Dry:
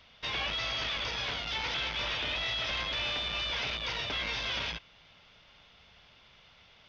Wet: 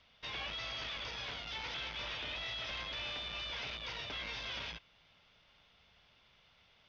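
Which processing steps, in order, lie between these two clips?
low-pass 9.2 kHz 12 dB/octave; trim -8 dB

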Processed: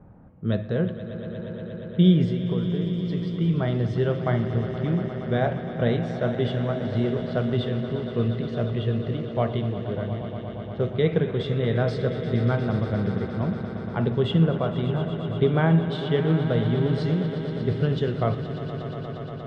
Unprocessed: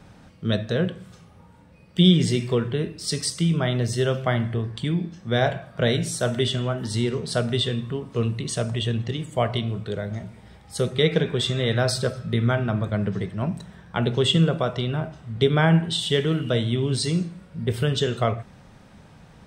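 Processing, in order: 2.25–3.39 s: compression, threshold -25 dBFS, peak gain reduction 8.5 dB; level-controlled noise filter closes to 1.1 kHz, open at -18 dBFS; tape spacing loss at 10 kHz 36 dB; on a send: echo with a slow build-up 118 ms, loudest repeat 5, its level -13.5 dB

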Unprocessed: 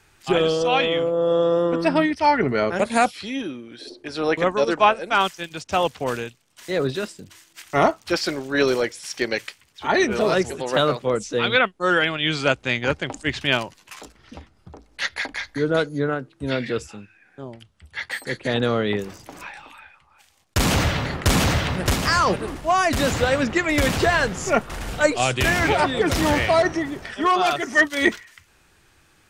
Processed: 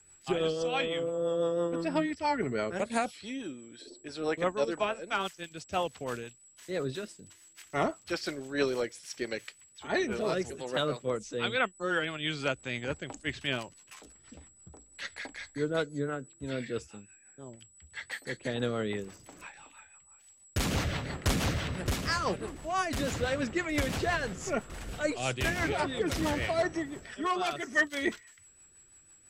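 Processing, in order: whistle 7.8 kHz -45 dBFS; rotary cabinet horn 6 Hz; trim -8.5 dB

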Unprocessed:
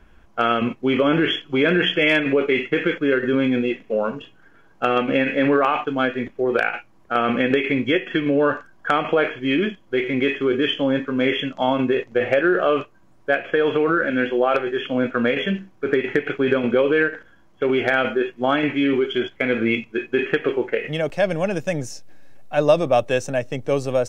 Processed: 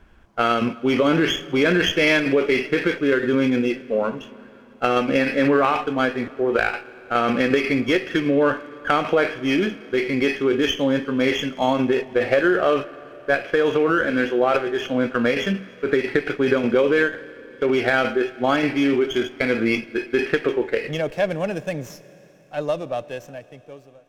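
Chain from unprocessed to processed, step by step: fade out at the end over 3.48 s; Schroeder reverb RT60 3.5 s, combs from 29 ms, DRR 17.5 dB; sliding maximum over 3 samples

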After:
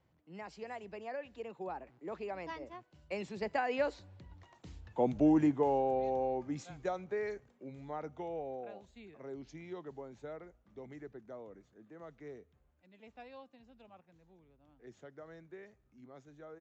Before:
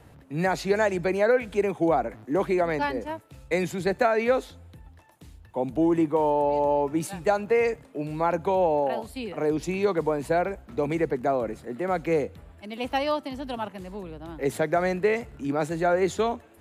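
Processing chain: Doppler pass-by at 4.86 s, 40 m/s, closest 20 m; resampled via 16 kHz; trim -2 dB

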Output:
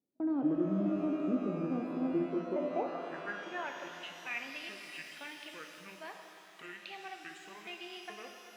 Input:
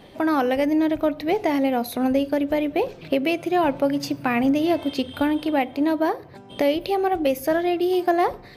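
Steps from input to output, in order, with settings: pitch shift switched off and on -8.5 st, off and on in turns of 426 ms; gate -33 dBFS, range -28 dB; band-pass sweep 280 Hz -> 2.5 kHz, 1.91–3.98 s; pitch-shifted reverb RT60 3.2 s, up +12 st, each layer -8 dB, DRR 3 dB; trim -8 dB

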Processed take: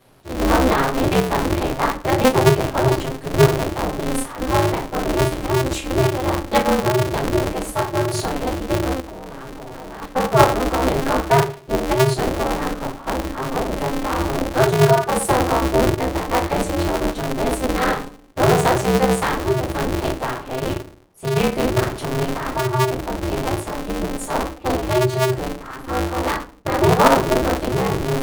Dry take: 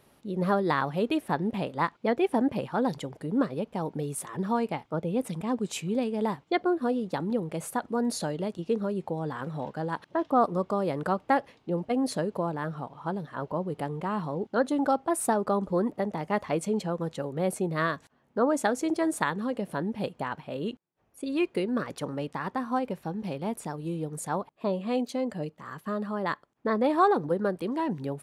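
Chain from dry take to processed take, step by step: simulated room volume 210 m³, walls furnished, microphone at 5.1 m; 9.00–10.02 s: level held to a coarse grid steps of 16 dB; polarity switched at an audio rate 130 Hz; trim -2 dB

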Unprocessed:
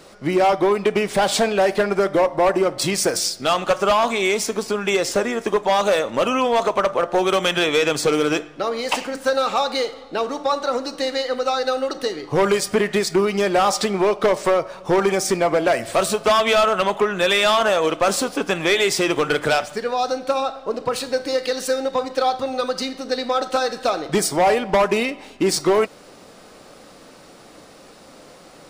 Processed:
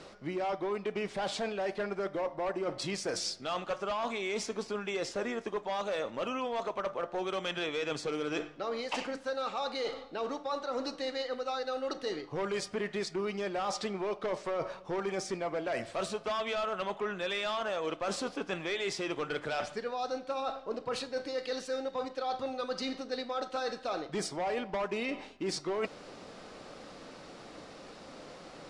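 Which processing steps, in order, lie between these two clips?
low-pass 5.8 kHz 12 dB/octave; reverse; compression 6:1, threshold -29 dBFS, peak gain reduction 14 dB; reverse; trim -3.5 dB

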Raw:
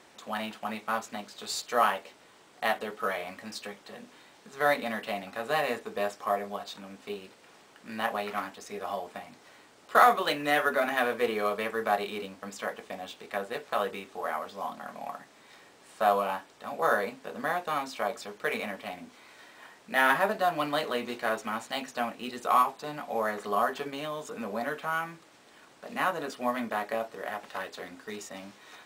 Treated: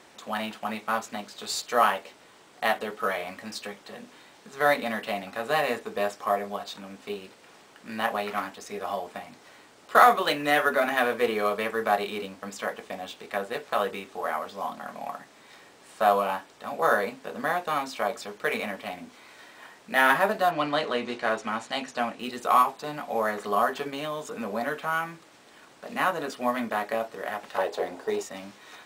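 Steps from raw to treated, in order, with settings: 20.50–22.18 s: low-pass 5.5 kHz -> 9.3 kHz 12 dB/octave; 27.58–28.23 s: high-order bell 580 Hz +11 dB; trim +3 dB

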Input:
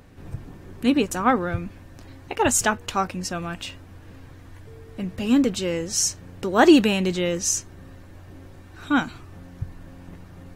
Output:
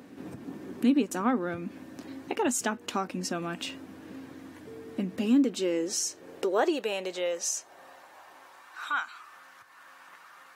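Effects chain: compression 2.5:1, threshold -32 dBFS, peak gain reduction 15 dB; high-pass sweep 250 Hz -> 1.2 kHz, 5.15–9.02 s

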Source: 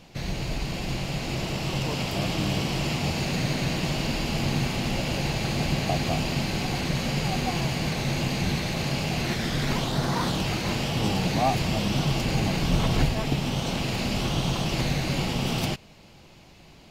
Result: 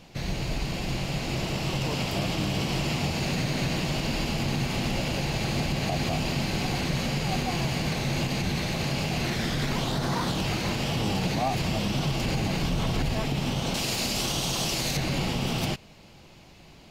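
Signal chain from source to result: 13.74–14.97 s: tone controls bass -5 dB, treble +11 dB; peak limiter -18 dBFS, peak gain reduction 8.5 dB

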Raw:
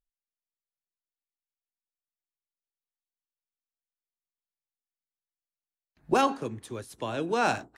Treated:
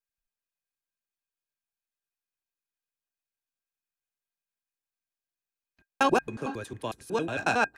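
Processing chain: slices played last to first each 91 ms, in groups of 3; small resonant body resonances 1.6/2.5 kHz, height 16 dB, ringing for 95 ms

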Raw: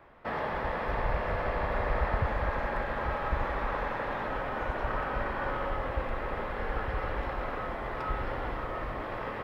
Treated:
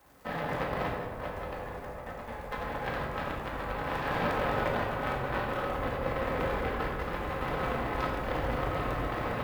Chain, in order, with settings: high-pass 53 Hz 12 dB/octave; peaking EQ 78 Hz +6 dB 2.9 oct; compressor with a negative ratio -33 dBFS, ratio -0.5; flange 0.88 Hz, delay 2.1 ms, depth 6 ms, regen +65%; added noise violet -65 dBFS; on a send: feedback echo behind a band-pass 135 ms, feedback 80%, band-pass 610 Hz, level -8 dB; on the sum: crackle 180 per s -45 dBFS; Chebyshev shaper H 3 -12 dB, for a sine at -23.5 dBFS; simulated room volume 590 m³, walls mixed, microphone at 2 m; trim +6 dB

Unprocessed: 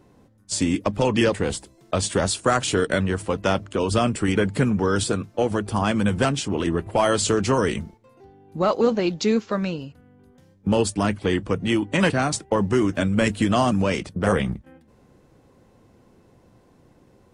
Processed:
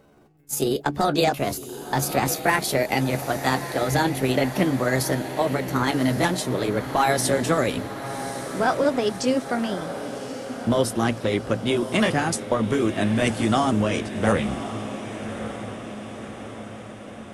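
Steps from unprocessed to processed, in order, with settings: pitch bend over the whole clip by +6.5 st ending unshifted; echo that smears into a reverb 1126 ms, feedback 60%, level -10.5 dB

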